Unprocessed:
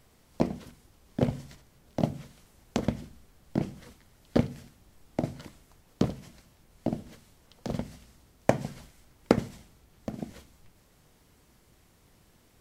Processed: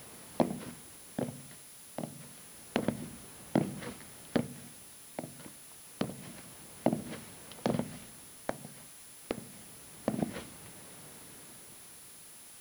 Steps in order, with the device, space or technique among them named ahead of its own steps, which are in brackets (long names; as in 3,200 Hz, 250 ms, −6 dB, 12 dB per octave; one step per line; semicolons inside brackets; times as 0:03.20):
medium wave at night (band-pass filter 140–3,500 Hz; downward compressor 4 to 1, threshold −37 dBFS, peak gain reduction 19 dB; amplitude tremolo 0.28 Hz, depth 77%; steady tone 10,000 Hz −64 dBFS; white noise bed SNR 15 dB)
level +11 dB